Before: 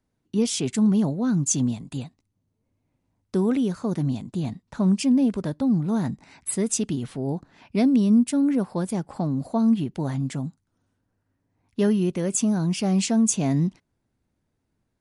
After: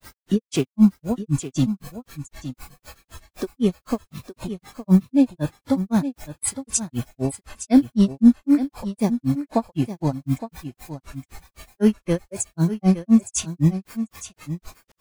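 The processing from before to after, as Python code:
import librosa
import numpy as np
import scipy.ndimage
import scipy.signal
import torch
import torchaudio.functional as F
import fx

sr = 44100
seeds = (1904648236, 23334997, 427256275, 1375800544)

p1 = fx.dmg_noise_colour(x, sr, seeds[0], colour='pink', level_db=-42.0)
p2 = fx.granulator(p1, sr, seeds[1], grain_ms=141.0, per_s=3.9, spray_ms=100.0, spread_st=0)
p3 = fx.noise_reduce_blind(p2, sr, reduce_db=13)
p4 = p3 + fx.echo_single(p3, sr, ms=864, db=-12.0, dry=0)
y = p4 * 10.0 ** (8.0 / 20.0)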